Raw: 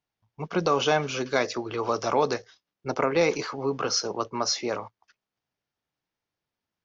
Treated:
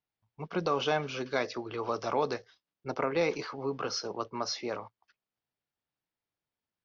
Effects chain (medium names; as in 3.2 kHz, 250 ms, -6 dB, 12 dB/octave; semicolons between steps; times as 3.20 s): low-pass 5.3 kHz 24 dB/octave; trim -6 dB